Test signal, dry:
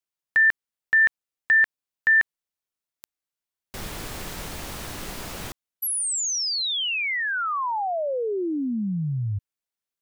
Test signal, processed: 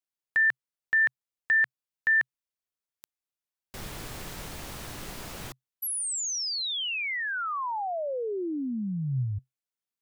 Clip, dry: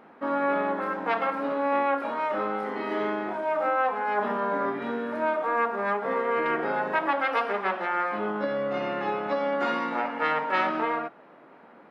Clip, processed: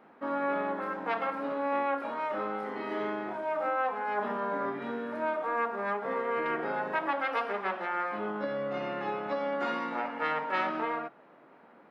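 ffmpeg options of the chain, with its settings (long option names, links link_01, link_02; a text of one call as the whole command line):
ffmpeg -i in.wav -af "adynamicequalizer=threshold=0.00126:dfrequency=130:dqfactor=6.3:tfrequency=130:tqfactor=6.3:attack=5:release=100:ratio=0.375:range=2.5:mode=boostabove:tftype=bell,volume=-5dB" out.wav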